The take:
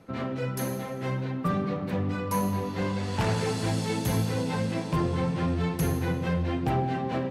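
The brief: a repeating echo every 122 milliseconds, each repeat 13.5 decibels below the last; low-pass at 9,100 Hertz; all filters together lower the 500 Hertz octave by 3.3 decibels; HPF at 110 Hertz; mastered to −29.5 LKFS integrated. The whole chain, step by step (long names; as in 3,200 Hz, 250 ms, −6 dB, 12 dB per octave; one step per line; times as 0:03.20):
high-pass filter 110 Hz
low-pass filter 9,100 Hz
parametric band 500 Hz −4 dB
repeating echo 122 ms, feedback 21%, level −13.5 dB
level +1 dB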